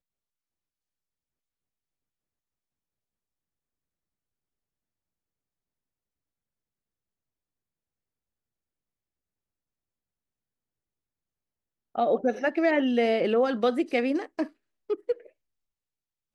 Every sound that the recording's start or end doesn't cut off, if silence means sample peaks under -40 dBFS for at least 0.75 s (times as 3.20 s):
11.95–15.26 s